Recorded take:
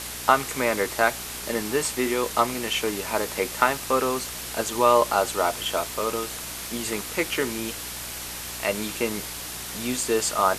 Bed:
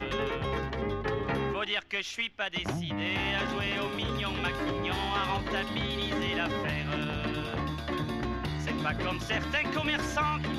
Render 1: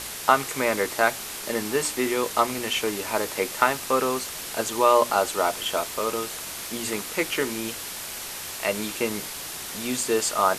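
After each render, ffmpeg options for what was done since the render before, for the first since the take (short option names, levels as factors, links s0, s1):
-af "bandreject=f=60:t=h:w=4,bandreject=f=120:t=h:w=4,bandreject=f=180:t=h:w=4,bandreject=f=240:t=h:w=4,bandreject=f=300:t=h:w=4"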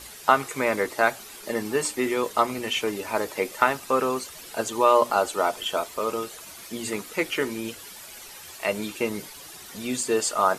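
-af "afftdn=nr=11:nf=-35"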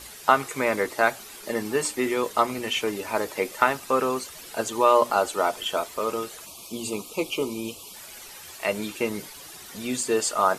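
-filter_complex "[0:a]asettb=1/sr,asplit=3[s0][s1][s2];[s0]atrim=end=6.464[s3];[s1]atrim=start=6.46:end=7.94,asetpts=PTS-STARTPTS,afade=t=in:d=0.004:c=qsin,afade=t=out:st=1.476:d=0.004:c=qsin,asuperstop=centerf=1700:order=8:qfactor=1.5[s4];[s2]atrim=start=7.936[s5];[s3][s4]acrossfade=d=0.004:c1=hsin:c2=qsin[s6];[s6][s5]acrossfade=d=0.004:c1=qsin:c2=hsin"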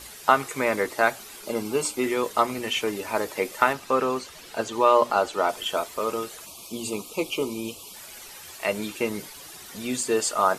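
-filter_complex "[0:a]asettb=1/sr,asplit=3[s0][s1][s2];[s0]atrim=end=1.444[s3];[s1]atrim=start=1.44:end=2.04,asetpts=PTS-STARTPTS,afade=t=in:d=0.004:c=qsin,afade=t=out:st=0.596:d=0.004:c=qsin,asuperstop=centerf=1800:order=4:qfactor=4.6[s4];[s2]atrim=start=2.036[s5];[s3][s4]acrossfade=d=0.004:c1=hsin:c2=qsin[s6];[s6][s5]acrossfade=d=0.004:c1=qsin:c2=hsin,asettb=1/sr,asplit=3[s7][s8][s9];[s7]atrim=end=3.734[s10];[s8]atrim=start=3.73:end=5.49,asetpts=PTS-STARTPTS,afade=t=in:d=0.004:c=qsin,afade=t=out:st=1.756:d=0.004:c=qsin,acrossover=split=6200[s11][s12];[s12]acompressor=threshold=0.00316:ratio=4:attack=1:release=60[s13];[s11][s13]amix=inputs=2:normalize=0[s14];[s9]atrim=start=5.486[s15];[s10][s14]acrossfade=d=0.004:c1=hsin:c2=qsin[s16];[s16][s15]acrossfade=d=0.004:c1=qsin:c2=hsin"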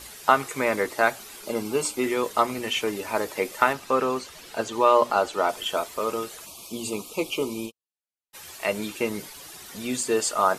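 -filter_complex "[0:a]asplit=3[s0][s1][s2];[s0]afade=t=out:st=7.65:d=0.02[s3];[s1]agate=range=0.00141:threshold=0.0282:ratio=16:release=100:detection=peak,afade=t=in:st=7.65:d=0.02,afade=t=out:st=8.33:d=0.02[s4];[s2]afade=t=in:st=8.33:d=0.02[s5];[s3][s4][s5]amix=inputs=3:normalize=0"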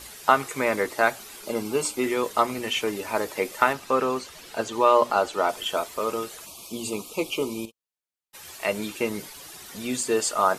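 -filter_complex "[0:a]asettb=1/sr,asplit=3[s0][s1][s2];[s0]atrim=end=7.654[s3];[s1]atrim=start=7.65:end=8.45,asetpts=PTS-STARTPTS,afade=t=in:d=0.004:c=qsin,afade=t=out:st=0.796:d=0.004:c=qsin,acompressor=threshold=0.0112:ratio=6:attack=3.2:release=140:knee=1:detection=peak[s4];[s2]atrim=start=8.446[s5];[s3][s4]acrossfade=d=0.004:c1=hsin:c2=qsin[s6];[s6][s5]acrossfade=d=0.004:c1=qsin:c2=hsin"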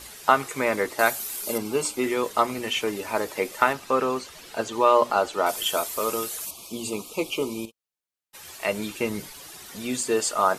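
-filter_complex "[0:a]asettb=1/sr,asplit=3[s0][s1][s2];[s0]atrim=end=0.994[s3];[s1]atrim=start=0.99:end=1.58,asetpts=PTS-STARTPTS,afade=t=in:d=0.004:c=qsin,afade=t=out:st=0.586:d=0.004:c=qsin,aemphasis=mode=production:type=50fm[s4];[s2]atrim=start=1.576[s5];[s3][s4]acrossfade=d=0.004:c1=hsin:c2=qsin[s6];[s6][s5]acrossfade=d=0.004:c1=qsin:c2=hsin,asettb=1/sr,asplit=3[s7][s8][s9];[s7]atrim=end=5.464[s10];[s8]atrim=start=5.46:end=6.51,asetpts=PTS-STARTPTS,afade=t=in:d=0.004:c=qsin,afade=t=out:st=1.046:d=0.004:c=qsin,aemphasis=mode=production:type=50kf[s11];[s9]atrim=start=6.506[s12];[s10][s11]acrossfade=d=0.004:c1=hsin:c2=qsin[s13];[s13][s12]acrossfade=d=0.004:c1=qsin:c2=hsin,asettb=1/sr,asplit=3[s14][s15][s16];[s14]atrim=end=8.604[s17];[s15]atrim=start=8.6:end=9.34,asetpts=PTS-STARTPTS,afade=t=in:d=0.004:c=qsin,afade=t=out:st=0.736:d=0.004:c=qsin,asubboost=boost=5:cutoff=250[s18];[s16]atrim=start=9.336[s19];[s17][s18]acrossfade=d=0.004:c1=hsin:c2=qsin[s20];[s20][s19]acrossfade=d=0.004:c1=qsin:c2=hsin"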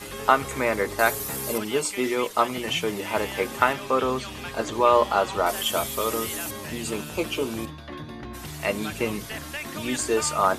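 -filter_complex "[1:a]volume=0.562[s0];[0:a][s0]amix=inputs=2:normalize=0"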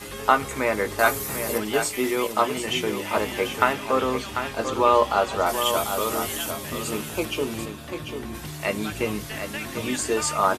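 -filter_complex "[0:a]asplit=2[s0][s1];[s1]adelay=19,volume=0.251[s2];[s0][s2]amix=inputs=2:normalize=0,asplit=2[s3][s4];[s4]aecho=0:1:744:0.398[s5];[s3][s5]amix=inputs=2:normalize=0"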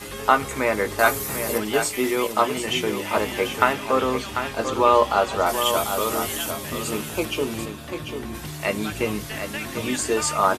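-af "volume=1.19,alimiter=limit=0.794:level=0:latency=1"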